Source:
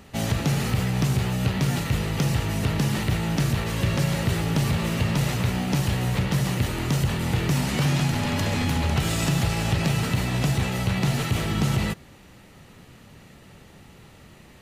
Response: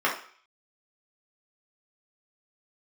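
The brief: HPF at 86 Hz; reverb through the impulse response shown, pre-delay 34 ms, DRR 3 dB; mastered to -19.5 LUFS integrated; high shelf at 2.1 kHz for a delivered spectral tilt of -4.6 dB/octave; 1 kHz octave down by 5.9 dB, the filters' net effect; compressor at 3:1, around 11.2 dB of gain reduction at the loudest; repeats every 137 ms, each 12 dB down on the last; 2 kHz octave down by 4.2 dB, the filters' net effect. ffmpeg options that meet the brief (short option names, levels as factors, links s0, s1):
-filter_complex "[0:a]highpass=86,equalizer=f=1000:t=o:g=-7.5,equalizer=f=2000:t=o:g=-7,highshelf=f=2100:g=5.5,acompressor=threshold=0.0178:ratio=3,aecho=1:1:137|274|411:0.251|0.0628|0.0157,asplit=2[s0][s1];[1:a]atrim=start_sample=2205,adelay=34[s2];[s1][s2]afir=irnorm=-1:irlink=0,volume=0.133[s3];[s0][s3]amix=inputs=2:normalize=0,volume=5.62"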